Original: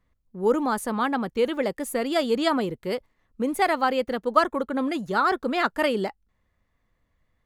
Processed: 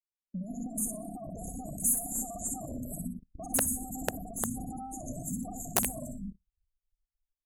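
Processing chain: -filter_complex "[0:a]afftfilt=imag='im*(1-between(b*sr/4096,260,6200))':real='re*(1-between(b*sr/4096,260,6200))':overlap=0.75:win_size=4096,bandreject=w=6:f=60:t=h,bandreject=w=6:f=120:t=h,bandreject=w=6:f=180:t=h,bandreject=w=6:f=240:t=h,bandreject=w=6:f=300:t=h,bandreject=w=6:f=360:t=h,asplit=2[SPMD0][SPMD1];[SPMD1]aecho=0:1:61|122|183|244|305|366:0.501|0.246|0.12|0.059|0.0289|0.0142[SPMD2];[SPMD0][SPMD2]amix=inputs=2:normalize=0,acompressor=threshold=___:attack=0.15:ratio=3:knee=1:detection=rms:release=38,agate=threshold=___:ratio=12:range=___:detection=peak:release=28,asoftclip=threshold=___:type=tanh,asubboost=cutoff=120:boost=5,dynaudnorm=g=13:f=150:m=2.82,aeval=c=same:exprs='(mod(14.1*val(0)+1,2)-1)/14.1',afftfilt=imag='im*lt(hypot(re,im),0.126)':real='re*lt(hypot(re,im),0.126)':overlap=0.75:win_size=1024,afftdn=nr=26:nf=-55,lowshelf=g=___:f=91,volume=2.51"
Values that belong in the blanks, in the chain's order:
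0.0158, 0.001, 0.0501, 0.0188, -7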